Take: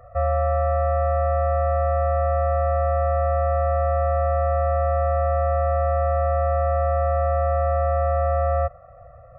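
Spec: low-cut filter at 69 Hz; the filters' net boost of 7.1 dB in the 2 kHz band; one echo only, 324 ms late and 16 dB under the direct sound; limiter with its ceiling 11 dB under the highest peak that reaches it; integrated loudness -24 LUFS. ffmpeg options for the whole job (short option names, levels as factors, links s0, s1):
-af "highpass=69,equalizer=f=2000:t=o:g=7.5,alimiter=level_in=1.06:limit=0.0631:level=0:latency=1,volume=0.944,aecho=1:1:324:0.158,volume=2.66"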